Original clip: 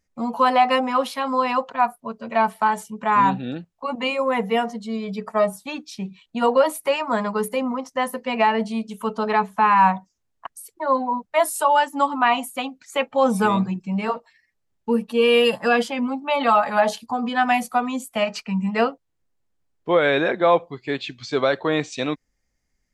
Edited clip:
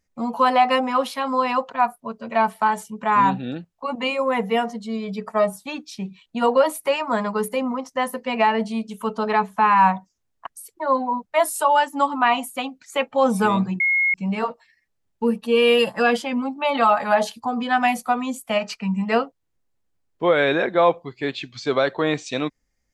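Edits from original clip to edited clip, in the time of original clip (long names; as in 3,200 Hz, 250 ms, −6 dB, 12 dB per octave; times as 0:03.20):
0:13.80: insert tone 2,160 Hz −16 dBFS 0.34 s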